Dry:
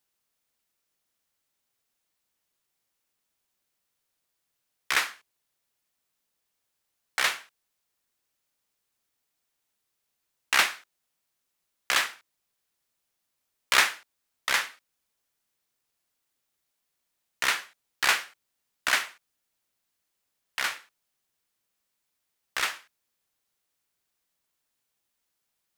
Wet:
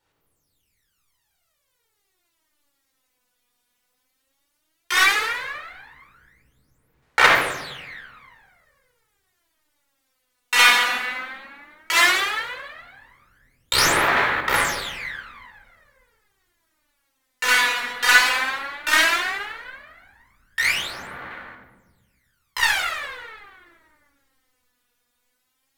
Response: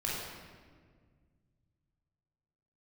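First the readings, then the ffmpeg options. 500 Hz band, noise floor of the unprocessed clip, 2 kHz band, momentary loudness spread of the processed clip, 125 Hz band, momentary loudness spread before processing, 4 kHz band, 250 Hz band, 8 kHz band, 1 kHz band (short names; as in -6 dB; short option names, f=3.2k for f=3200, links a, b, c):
+13.5 dB, -80 dBFS, +10.5 dB, 20 LU, n/a, 16 LU, +8.5 dB, +15.0 dB, +7.0 dB, +11.0 dB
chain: -filter_complex "[1:a]atrim=start_sample=2205,asetrate=34839,aresample=44100[a];[0:a][a]afir=irnorm=-1:irlink=0,aphaser=in_gain=1:out_gain=1:delay=4.1:decay=0.8:speed=0.14:type=sinusoidal,acrusher=bits=9:mode=log:mix=0:aa=0.000001,volume=-1dB"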